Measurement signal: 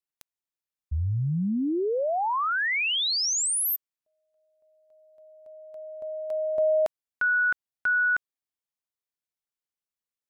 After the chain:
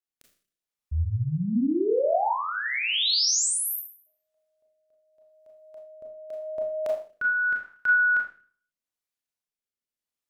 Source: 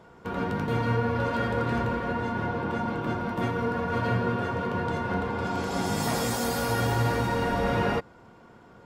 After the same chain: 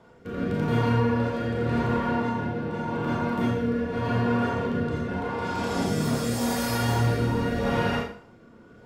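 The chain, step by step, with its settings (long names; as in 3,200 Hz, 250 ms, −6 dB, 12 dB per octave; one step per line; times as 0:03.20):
four-comb reverb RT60 0.47 s, combs from 26 ms, DRR −0.5 dB
rotating-speaker cabinet horn 0.85 Hz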